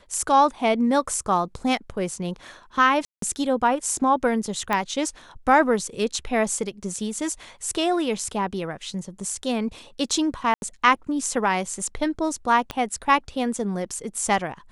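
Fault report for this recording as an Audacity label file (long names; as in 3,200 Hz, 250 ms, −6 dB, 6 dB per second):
3.050000	3.220000	drop-out 173 ms
4.730000	4.730000	click −10 dBFS
10.540000	10.620000	drop-out 81 ms
12.710000	12.710000	click −14 dBFS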